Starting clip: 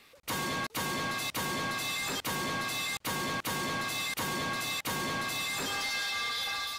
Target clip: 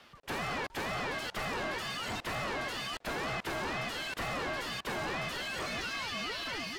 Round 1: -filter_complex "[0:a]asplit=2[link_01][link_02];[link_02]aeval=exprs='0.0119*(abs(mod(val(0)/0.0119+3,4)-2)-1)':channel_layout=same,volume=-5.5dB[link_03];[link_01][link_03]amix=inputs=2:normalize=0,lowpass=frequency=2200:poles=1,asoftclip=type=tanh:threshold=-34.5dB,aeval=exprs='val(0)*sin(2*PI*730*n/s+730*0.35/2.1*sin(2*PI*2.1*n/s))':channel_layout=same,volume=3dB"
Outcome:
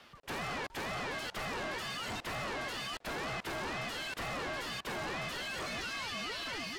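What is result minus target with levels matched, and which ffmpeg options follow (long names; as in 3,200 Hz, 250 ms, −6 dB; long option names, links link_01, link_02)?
soft clipping: distortion +15 dB
-filter_complex "[0:a]asplit=2[link_01][link_02];[link_02]aeval=exprs='0.0119*(abs(mod(val(0)/0.0119+3,4)-2)-1)':channel_layout=same,volume=-5.5dB[link_03];[link_01][link_03]amix=inputs=2:normalize=0,lowpass=frequency=2200:poles=1,asoftclip=type=tanh:threshold=-25dB,aeval=exprs='val(0)*sin(2*PI*730*n/s+730*0.35/2.1*sin(2*PI*2.1*n/s))':channel_layout=same,volume=3dB"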